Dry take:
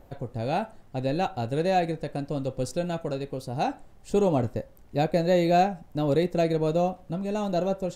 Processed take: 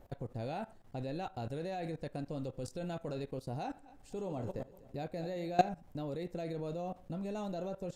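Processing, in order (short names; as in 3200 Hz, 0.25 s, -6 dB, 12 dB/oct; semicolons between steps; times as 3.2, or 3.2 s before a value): 3.65–5.69 regenerating reverse delay 0.123 s, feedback 55%, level -14 dB; level quantiser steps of 18 dB; gain -2.5 dB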